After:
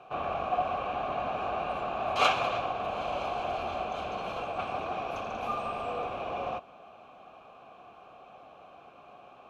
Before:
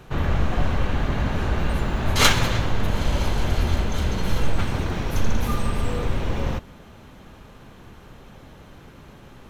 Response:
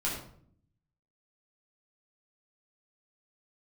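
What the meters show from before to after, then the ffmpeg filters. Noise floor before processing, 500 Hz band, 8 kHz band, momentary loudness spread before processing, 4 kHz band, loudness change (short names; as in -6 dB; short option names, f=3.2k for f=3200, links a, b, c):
-46 dBFS, -2.5 dB, -20.5 dB, 8 LU, -11.0 dB, -7.5 dB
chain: -filter_complex "[0:a]acontrast=34,asplit=3[a][b][c];[a]bandpass=f=730:t=q:w=8,volume=0dB[d];[b]bandpass=f=1.09k:t=q:w=8,volume=-6dB[e];[c]bandpass=f=2.44k:t=q:w=8,volume=-9dB[f];[d][e][f]amix=inputs=3:normalize=0,volume=3dB"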